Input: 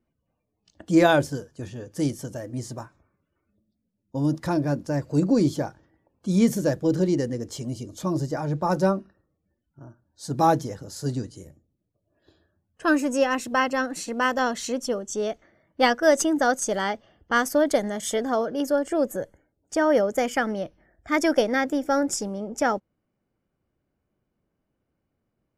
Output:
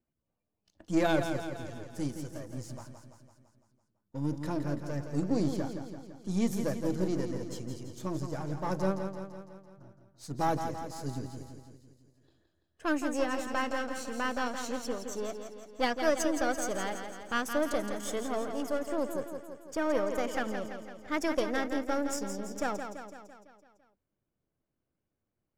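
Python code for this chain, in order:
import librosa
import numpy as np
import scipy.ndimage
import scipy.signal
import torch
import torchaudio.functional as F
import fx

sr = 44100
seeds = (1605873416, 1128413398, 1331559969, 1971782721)

y = np.where(x < 0.0, 10.0 ** (-7.0 / 20.0) * x, x)
y = fx.echo_feedback(y, sr, ms=168, feedback_pct=58, wet_db=-7.5)
y = F.gain(torch.from_numpy(y), -7.0).numpy()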